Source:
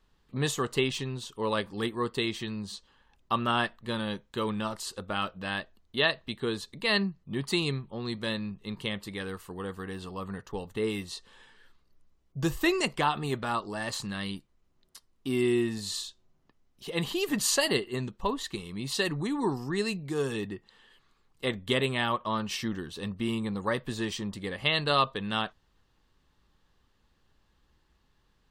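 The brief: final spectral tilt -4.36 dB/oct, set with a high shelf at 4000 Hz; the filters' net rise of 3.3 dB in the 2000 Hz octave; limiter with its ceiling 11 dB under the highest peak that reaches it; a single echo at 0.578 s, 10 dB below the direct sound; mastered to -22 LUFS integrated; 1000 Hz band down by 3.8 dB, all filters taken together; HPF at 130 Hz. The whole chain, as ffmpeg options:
-af "highpass=130,equalizer=f=1k:t=o:g=-6.5,equalizer=f=2k:t=o:g=7.5,highshelf=f=4k:g=-7,alimiter=limit=-20dB:level=0:latency=1,aecho=1:1:578:0.316,volume=11.5dB"

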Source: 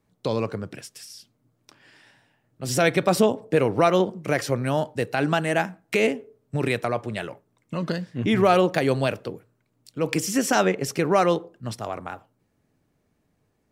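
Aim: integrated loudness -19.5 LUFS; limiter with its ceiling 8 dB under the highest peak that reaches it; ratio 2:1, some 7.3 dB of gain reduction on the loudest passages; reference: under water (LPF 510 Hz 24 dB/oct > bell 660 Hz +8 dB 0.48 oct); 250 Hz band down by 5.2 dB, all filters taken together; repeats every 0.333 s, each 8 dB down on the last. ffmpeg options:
-af "equalizer=f=250:t=o:g=-8,acompressor=threshold=-29dB:ratio=2,alimiter=limit=-19dB:level=0:latency=1,lowpass=f=510:w=0.5412,lowpass=f=510:w=1.3066,equalizer=f=660:t=o:w=0.48:g=8,aecho=1:1:333|666|999|1332|1665:0.398|0.159|0.0637|0.0255|0.0102,volume=15dB"

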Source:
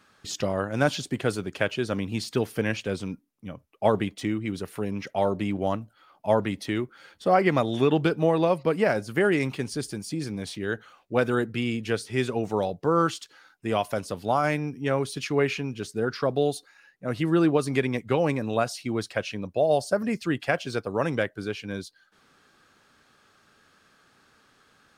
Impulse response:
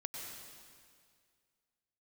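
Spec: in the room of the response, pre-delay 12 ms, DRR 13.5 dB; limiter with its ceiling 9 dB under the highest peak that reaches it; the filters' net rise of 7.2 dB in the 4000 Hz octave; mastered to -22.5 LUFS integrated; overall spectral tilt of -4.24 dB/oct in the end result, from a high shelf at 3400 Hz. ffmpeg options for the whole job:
-filter_complex "[0:a]highshelf=f=3.4k:g=9,equalizer=f=4k:t=o:g=3,alimiter=limit=-14.5dB:level=0:latency=1,asplit=2[a][b];[1:a]atrim=start_sample=2205,adelay=12[c];[b][c]afir=irnorm=-1:irlink=0,volume=-12.5dB[d];[a][d]amix=inputs=2:normalize=0,volume=5dB"

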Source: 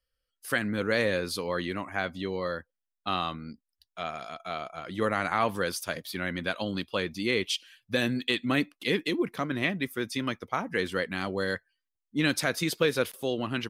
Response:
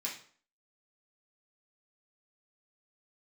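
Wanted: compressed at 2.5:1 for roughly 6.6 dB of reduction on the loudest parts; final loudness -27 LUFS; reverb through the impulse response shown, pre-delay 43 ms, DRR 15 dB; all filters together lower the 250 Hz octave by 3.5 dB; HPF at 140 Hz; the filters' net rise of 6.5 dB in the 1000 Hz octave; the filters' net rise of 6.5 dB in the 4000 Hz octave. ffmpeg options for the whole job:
-filter_complex "[0:a]highpass=140,equalizer=f=250:t=o:g=-4.5,equalizer=f=1k:t=o:g=8.5,equalizer=f=4k:t=o:g=7.5,acompressor=threshold=-26dB:ratio=2.5,asplit=2[a][b];[1:a]atrim=start_sample=2205,adelay=43[c];[b][c]afir=irnorm=-1:irlink=0,volume=-16.5dB[d];[a][d]amix=inputs=2:normalize=0,volume=3.5dB"

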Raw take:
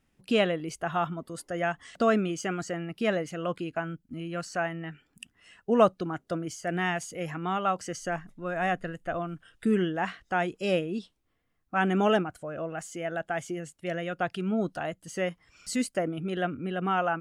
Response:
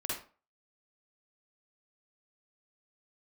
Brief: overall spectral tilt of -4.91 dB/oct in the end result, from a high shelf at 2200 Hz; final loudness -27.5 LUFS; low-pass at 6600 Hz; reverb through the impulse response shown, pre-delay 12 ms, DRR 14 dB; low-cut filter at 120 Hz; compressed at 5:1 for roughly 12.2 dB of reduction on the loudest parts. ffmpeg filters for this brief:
-filter_complex "[0:a]highpass=120,lowpass=6.6k,highshelf=f=2.2k:g=3.5,acompressor=threshold=-28dB:ratio=5,asplit=2[a][b];[1:a]atrim=start_sample=2205,adelay=12[c];[b][c]afir=irnorm=-1:irlink=0,volume=-17.5dB[d];[a][d]amix=inputs=2:normalize=0,volume=6.5dB"

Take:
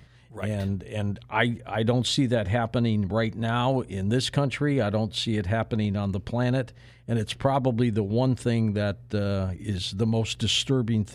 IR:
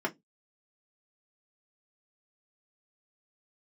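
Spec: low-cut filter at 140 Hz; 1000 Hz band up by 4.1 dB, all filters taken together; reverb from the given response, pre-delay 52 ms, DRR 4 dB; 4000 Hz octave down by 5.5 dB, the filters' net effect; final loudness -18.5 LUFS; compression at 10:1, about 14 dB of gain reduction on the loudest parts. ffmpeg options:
-filter_complex "[0:a]highpass=140,equalizer=f=1k:t=o:g=6,equalizer=f=4k:t=o:g=-7.5,acompressor=threshold=-31dB:ratio=10,asplit=2[a][b];[1:a]atrim=start_sample=2205,adelay=52[c];[b][c]afir=irnorm=-1:irlink=0,volume=-11.5dB[d];[a][d]amix=inputs=2:normalize=0,volume=16dB"

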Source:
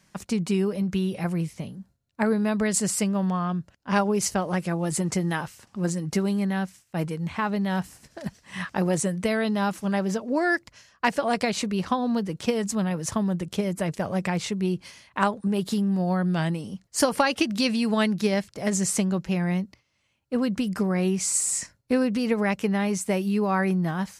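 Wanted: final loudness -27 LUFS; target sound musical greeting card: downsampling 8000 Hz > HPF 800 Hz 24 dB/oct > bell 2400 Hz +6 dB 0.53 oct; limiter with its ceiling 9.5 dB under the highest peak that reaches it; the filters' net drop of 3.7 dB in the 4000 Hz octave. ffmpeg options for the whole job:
-af "equalizer=f=4k:t=o:g=-7.5,alimiter=limit=-19dB:level=0:latency=1,aresample=8000,aresample=44100,highpass=f=800:w=0.5412,highpass=f=800:w=1.3066,equalizer=f=2.4k:t=o:w=0.53:g=6,volume=9.5dB"

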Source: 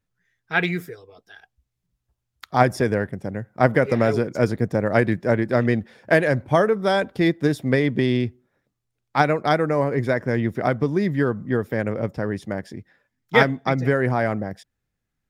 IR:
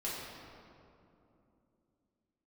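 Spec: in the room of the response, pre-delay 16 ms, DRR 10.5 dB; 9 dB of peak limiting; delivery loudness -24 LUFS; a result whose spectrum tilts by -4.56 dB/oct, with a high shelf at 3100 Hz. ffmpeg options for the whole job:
-filter_complex "[0:a]highshelf=f=3.1k:g=-3.5,alimiter=limit=-10.5dB:level=0:latency=1,asplit=2[a][b];[1:a]atrim=start_sample=2205,adelay=16[c];[b][c]afir=irnorm=-1:irlink=0,volume=-14dB[d];[a][d]amix=inputs=2:normalize=0,volume=-1dB"

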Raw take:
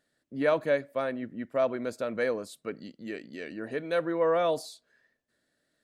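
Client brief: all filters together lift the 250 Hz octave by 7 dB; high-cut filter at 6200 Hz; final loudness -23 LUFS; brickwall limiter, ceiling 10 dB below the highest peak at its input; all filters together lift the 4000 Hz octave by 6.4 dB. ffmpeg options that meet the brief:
-af "lowpass=6.2k,equalizer=f=250:t=o:g=8.5,equalizer=f=4k:t=o:g=8,volume=8.5dB,alimiter=limit=-12dB:level=0:latency=1"

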